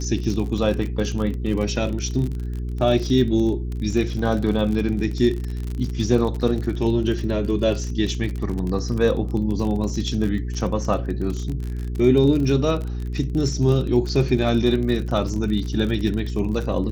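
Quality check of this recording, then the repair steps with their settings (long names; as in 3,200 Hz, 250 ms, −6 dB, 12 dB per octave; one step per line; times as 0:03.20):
surface crackle 40 per second −27 dBFS
mains hum 60 Hz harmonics 7 −27 dBFS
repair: click removal
hum removal 60 Hz, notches 7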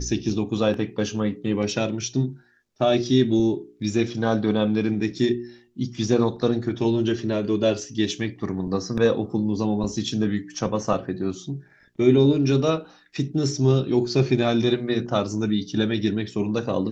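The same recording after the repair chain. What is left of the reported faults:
none of them is left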